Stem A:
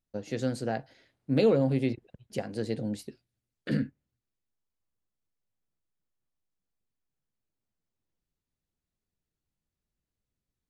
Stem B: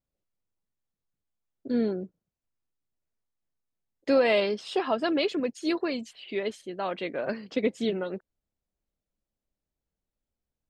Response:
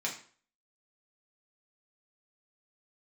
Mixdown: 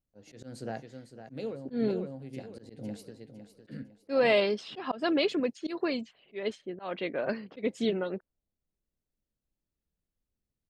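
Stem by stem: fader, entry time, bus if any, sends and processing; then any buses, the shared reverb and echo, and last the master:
-6.0 dB, 0.00 s, no send, echo send -11 dB, auto duck -14 dB, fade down 0.40 s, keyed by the second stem
-0.5 dB, 0.00 s, no send, no echo send, level-controlled noise filter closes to 480 Hz, open at -25 dBFS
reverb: none
echo: feedback delay 506 ms, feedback 35%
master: slow attack 155 ms

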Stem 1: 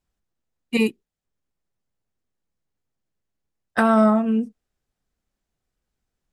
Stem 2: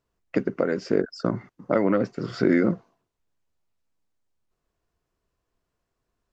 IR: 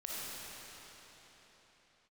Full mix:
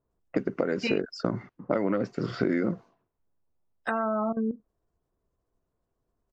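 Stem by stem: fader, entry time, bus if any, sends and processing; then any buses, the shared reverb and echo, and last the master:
+1.5 dB, 0.10 s, no send, spectral gate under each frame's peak -30 dB strong; tone controls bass -10 dB, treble +5 dB; level held to a coarse grid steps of 14 dB
+1.0 dB, 0.00 s, no send, level-controlled noise filter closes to 920 Hz, open at -22.5 dBFS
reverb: none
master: compression 6:1, threshold -22 dBFS, peak gain reduction 8.5 dB

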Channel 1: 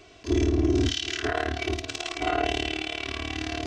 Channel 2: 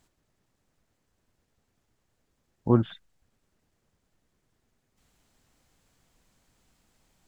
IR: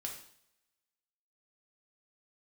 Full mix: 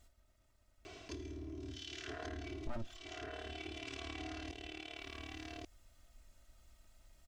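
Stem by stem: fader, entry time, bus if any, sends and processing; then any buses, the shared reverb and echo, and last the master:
-3.0 dB, 0.85 s, send -6 dB, echo send -3 dB, peak limiter -23 dBFS, peak gain reduction 11 dB; compression, threshold -35 dBFS, peak gain reduction 8 dB; auto duck -14 dB, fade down 0.35 s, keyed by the second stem
-2.5 dB, 0.00 s, no send, no echo send, comb filter that takes the minimum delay 1.5 ms; bass shelf 110 Hz +10 dB; comb 3.2 ms, depth 90%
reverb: on, pre-delay 3 ms
echo: delay 1136 ms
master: compression 3:1, threshold -43 dBFS, peak gain reduction 18 dB

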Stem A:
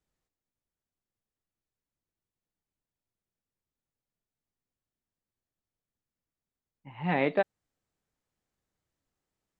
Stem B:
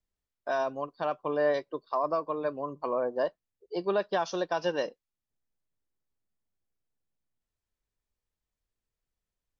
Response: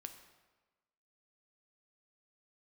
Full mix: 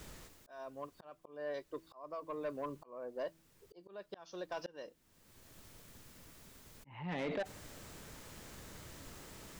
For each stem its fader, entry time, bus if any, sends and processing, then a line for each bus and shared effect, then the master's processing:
-6.5 dB, 0.00 s, send -12 dB, band-stop 760 Hz, Q 12; level flattener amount 70%; auto duck -14 dB, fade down 1.35 s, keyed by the second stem
-3.5 dB, 0.00 s, no send, peaking EQ 820 Hz -4 dB 0.36 oct; de-hum 163 Hz, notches 2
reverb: on, RT60 1.3 s, pre-delay 5 ms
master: slow attack 688 ms; saturation -32 dBFS, distortion -11 dB

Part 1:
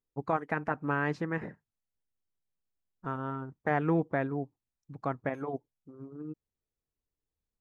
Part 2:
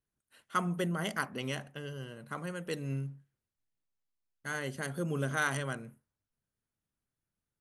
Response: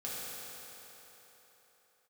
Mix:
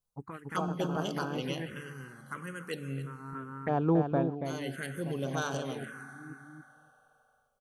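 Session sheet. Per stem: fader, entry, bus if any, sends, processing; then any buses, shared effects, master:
+2.0 dB, 0.00 s, no send, echo send -7 dB, auto duck -11 dB, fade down 0.25 s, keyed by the second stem
+1.0 dB, 0.00 s, send -11 dB, echo send -13 dB, bass shelf 130 Hz -10.5 dB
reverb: on, RT60 3.9 s, pre-delay 3 ms
echo: feedback delay 281 ms, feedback 17%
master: touch-sensitive phaser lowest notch 330 Hz, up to 2 kHz, full sweep at -27 dBFS

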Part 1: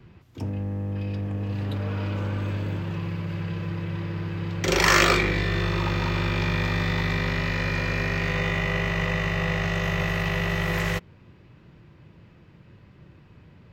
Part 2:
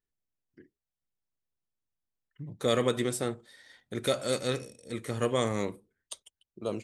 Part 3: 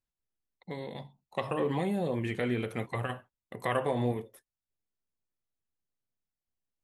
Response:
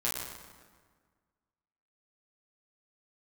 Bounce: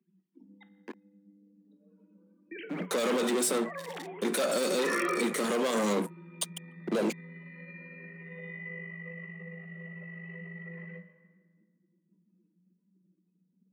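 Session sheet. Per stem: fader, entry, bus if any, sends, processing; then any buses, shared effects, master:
-12.0 dB, 0.00 s, send -9.5 dB, spectral contrast enhancement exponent 2.7
-3.5 dB, 0.30 s, no send, waveshaping leveller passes 5
-12.5 dB, 0.00 s, muted 0.64–2.51 s, send -13.5 dB, formants replaced by sine waves; spectrum-flattening compressor 2:1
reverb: on, RT60 1.6 s, pre-delay 8 ms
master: steep high-pass 180 Hz 96 dB/octave; peak limiter -20 dBFS, peak gain reduction 10 dB

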